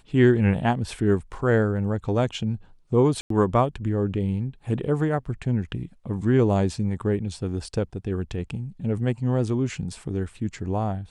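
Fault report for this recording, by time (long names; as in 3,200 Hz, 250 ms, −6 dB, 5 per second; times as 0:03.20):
0:03.21–0:03.30: drop-out 93 ms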